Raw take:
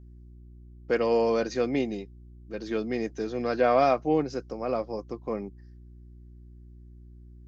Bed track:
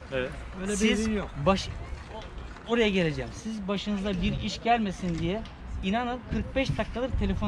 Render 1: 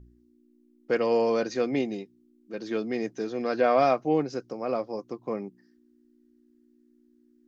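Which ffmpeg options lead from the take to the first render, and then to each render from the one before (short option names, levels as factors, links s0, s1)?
-af "bandreject=f=60:t=h:w=4,bandreject=f=120:t=h:w=4,bandreject=f=180:t=h:w=4"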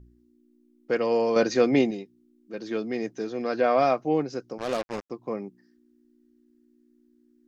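-filter_complex "[0:a]asettb=1/sr,asplit=3[s0][s1][s2];[s0]atrim=end=1.364[s3];[s1]atrim=start=1.36:end=1.91,asetpts=PTS-STARTPTS,afade=t=in:d=0.004:c=qsin,afade=t=out:st=0.546:d=0.004:c=qsin,acontrast=60[s4];[s2]atrim=start=1.906[s5];[s3][s4]acrossfade=d=0.004:c1=hsin:c2=qsin[s6];[s6][s5]acrossfade=d=0.004:c1=qsin:c2=hsin,asettb=1/sr,asplit=3[s7][s8][s9];[s7]atrim=end=4.584[s10];[s8]atrim=start=4.58:end=5.1,asetpts=PTS-STARTPTS,afade=t=in:d=0.004:c=qsin,afade=t=out:st=0.516:d=0.004:c=qsin,acrusher=bits=4:mix=0:aa=0.5[s11];[s9]atrim=start=5.096[s12];[s10][s11]acrossfade=d=0.004:c1=hsin:c2=qsin[s13];[s13][s12]acrossfade=d=0.004:c1=qsin:c2=hsin"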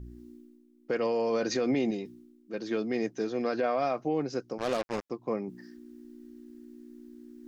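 -af "areverse,acompressor=mode=upward:threshold=0.0178:ratio=2.5,areverse,alimiter=limit=0.1:level=0:latency=1:release=53"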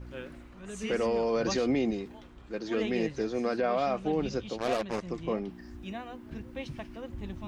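-filter_complex "[1:a]volume=0.251[s0];[0:a][s0]amix=inputs=2:normalize=0"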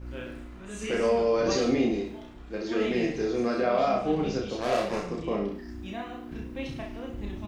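-filter_complex "[0:a]asplit=2[s0][s1];[s1]adelay=33,volume=0.562[s2];[s0][s2]amix=inputs=2:normalize=0,aecho=1:1:30|64.5|104.2|149.8|202.3:0.631|0.398|0.251|0.158|0.1"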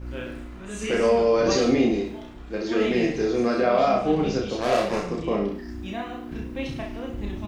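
-af "volume=1.68"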